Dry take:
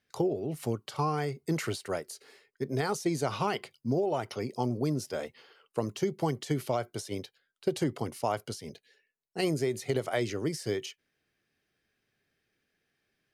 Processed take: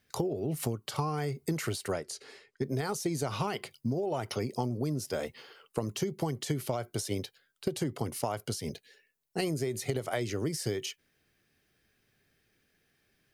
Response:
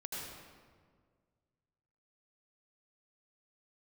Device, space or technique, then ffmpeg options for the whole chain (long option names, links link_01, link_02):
ASMR close-microphone chain: -filter_complex "[0:a]lowshelf=frequency=140:gain=7,acompressor=threshold=-33dB:ratio=6,highshelf=frequency=8600:gain=8,asettb=1/sr,asplit=3[link_01][link_02][link_03];[link_01]atrim=end=1.924[link_04];[link_02]atrim=start=1.92:end=2.64,asetpts=PTS-STARTPTS,afade=type=in:duration=0.004:curve=qsin,afade=type=out:start_time=0.716:duration=0.004:curve=qsin,lowpass=7000[link_05];[link_03]atrim=start=2.636[link_06];[link_04][link_05]acrossfade=duration=0.004:curve1=hsin:curve2=qsin[link_07];[link_07][link_06]acrossfade=duration=0.004:curve1=qsin:curve2=hsin,volume=4.5dB"